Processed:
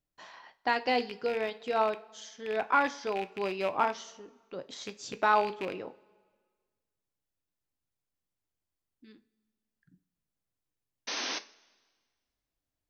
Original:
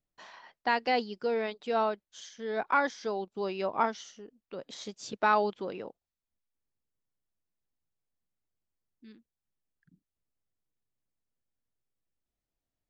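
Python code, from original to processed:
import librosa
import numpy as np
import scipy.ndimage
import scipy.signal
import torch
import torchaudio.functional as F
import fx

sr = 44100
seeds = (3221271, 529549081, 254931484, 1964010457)

y = fx.rattle_buzz(x, sr, strikes_db=-44.0, level_db=-28.0)
y = fx.spec_paint(y, sr, seeds[0], shape='noise', start_s=11.07, length_s=0.32, low_hz=200.0, high_hz=6400.0, level_db=-35.0)
y = fx.rev_double_slope(y, sr, seeds[1], early_s=0.29, late_s=1.6, knee_db=-19, drr_db=9.5)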